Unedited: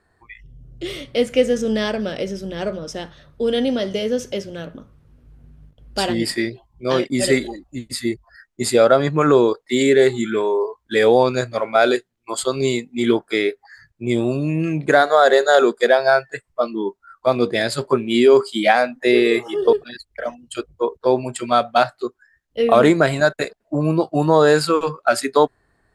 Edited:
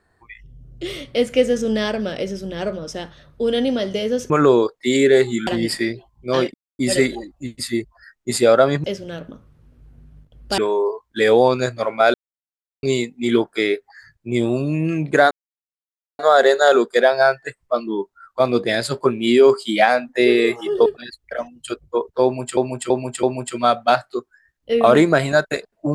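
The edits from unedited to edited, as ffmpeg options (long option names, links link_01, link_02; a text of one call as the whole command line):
ffmpeg -i in.wav -filter_complex "[0:a]asplit=12[link_01][link_02][link_03][link_04][link_05][link_06][link_07][link_08][link_09][link_10][link_11][link_12];[link_01]atrim=end=4.302[link_13];[link_02]atrim=start=9.158:end=10.332[link_14];[link_03]atrim=start=6.038:end=7.11,asetpts=PTS-STARTPTS,afade=type=out:start_time=1.068:duration=0.004:curve=hsin,apad=pad_dur=0.25[link_15];[link_04]atrim=start=7.11:end=9.162,asetpts=PTS-STARTPTS,afade=type=in:duration=0.004:curve=hsin[link_16];[link_05]atrim=start=4.298:end=6.042[link_17];[link_06]atrim=start=10.328:end=11.89,asetpts=PTS-STARTPTS,afade=type=out:start_time=1.558:duration=0.004:curve=hsin[link_18];[link_07]atrim=start=11.89:end=12.58,asetpts=PTS-STARTPTS,volume=0[link_19];[link_08]atrim=start=12.58:end=15.06,asetpts=PTS-STARTPTS,afade=type=in:duration=0.004:curve=hsin,afade=type=out:start_time=2.476:duration=0.004:curve=hsin,apad=pad_dur=0.88[link_20];[link_09]atrim=start=15.06:end=21.442,asetpts=PTS-STARTPTS,afade=type=in:duration=0.004:curve=hsin[link_21];[link_10]atrim=start=21.108:end=21.442[link_22];[link_11]atrim=start=21.108:end=21.442[link_23];[link_12]atrim=start=21.108[link_24];[link_13][link_14]acrossfade=duration=0.004:curve1=hsin:curve2=hsin[link_25];[link_15][link_16]concat=n=2:v=0:a=1[link_26];[link_25][link_26]acrossfade=duration=0.004:curve1=hsin:curve2=hsin[link_27];[link_27][link_17]acrossfade=duration=0.004:curve1=hsin:curve2=hsin[link_28];[link_18][link_19][link_20][link_21]concat=n=4:v=0:a=1[link_29];[link_28][link_29]acrossfade=duration=0.004:curve1=hsin:curve2=hsin[link_30];[link_30][link_22]acrossfade=duration=0.004:curve1=hsin:curve2=hsin[link_31];[link_31][link_23]acrossfade=duration=0.004:curve1=hsin:curve2=hsin[link_32];[link_32][link_24]acrossfade=duration=0.004:curve1=hsin:curve2=hsin" out.wav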